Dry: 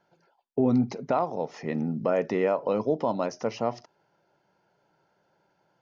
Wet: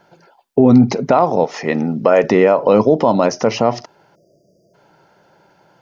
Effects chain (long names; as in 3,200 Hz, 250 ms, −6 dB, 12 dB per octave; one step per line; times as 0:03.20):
0:01.44–0:02.24: low-shelf EQ 270 Hz −11.5 dB
0:04.15–0:04.74: time-frequency box erased 710–4,700 Hz
boost into a limiter +17.5 dB
level −1 dB